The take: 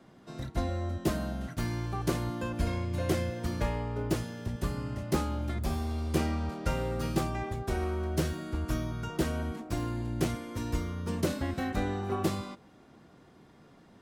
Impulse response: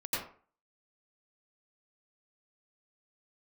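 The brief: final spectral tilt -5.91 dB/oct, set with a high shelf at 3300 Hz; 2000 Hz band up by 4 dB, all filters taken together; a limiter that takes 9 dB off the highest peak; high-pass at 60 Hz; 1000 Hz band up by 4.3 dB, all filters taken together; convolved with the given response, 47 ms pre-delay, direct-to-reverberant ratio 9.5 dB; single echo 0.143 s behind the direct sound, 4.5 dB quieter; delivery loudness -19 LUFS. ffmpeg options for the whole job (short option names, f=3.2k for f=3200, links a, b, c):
-filter_complex "[0:a]highpass=60,equalizer=f=1k:t=o:g=5,equalizer=f=2k:t=o:g=4.5,highshelf=f=3.3k:g=-4,alimiter=limit=-22dB:level=0:latency=1,aecho=1:1:143:0.596,asplit=2[a][b];[1:a]atrim=start_sample=2205,adelay=47[c];[b][c]afir=irnorm=-1:irlink=0,volume=-15dB[d];[a][d]amix=inputs=2:normalize=0,volume=13.5dB"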